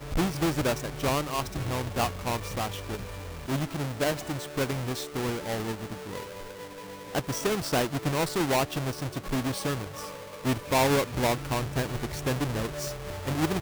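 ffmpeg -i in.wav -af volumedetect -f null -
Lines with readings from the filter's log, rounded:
mean_volume: -29.7 dB
max_volume: -15.5 dB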